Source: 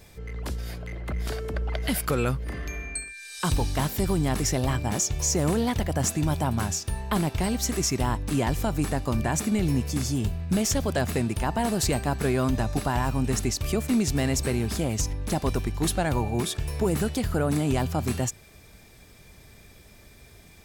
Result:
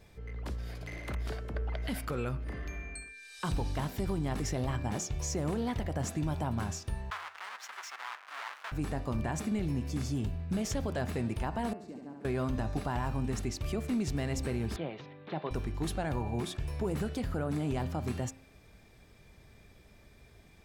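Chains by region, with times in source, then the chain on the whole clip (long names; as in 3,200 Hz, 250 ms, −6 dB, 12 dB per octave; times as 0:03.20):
0:00.75–0:01.15: high-shelf EQ 2,600 Hz +11.5 dB + flutter between parallel walls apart 10 metres, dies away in 1.2 s
0:07.10–0:08.72: each half-wave held at its own peak + high-pass filter 1,200 Hz 24 dB per octave + spectral tilt −4 dB per octave
0:11.73–0:12.25: resonant band-pass 260 Hz, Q 2.9 + spectral tilt +4 dB per octave + flutter between parallel walls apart 11.9 metres, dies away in 1 s
0:14.76–0:15.51: Chebyshev band-pass filter 150–3,800 Hz, order 4 + parametric band 220 Hz −11 dB 0.74 octaves
whole clip: high-shelf EQ 5,100 Hz −11.5 dB; hum removal 88.09 Hz, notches 32; brickwall limiter −19 dBFS; level −5.5 dB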